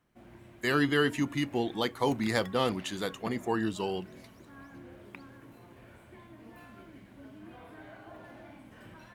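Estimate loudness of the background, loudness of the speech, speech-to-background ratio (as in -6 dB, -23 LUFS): -50.0 LUFS, -30.5 LUFS, 19.5 dB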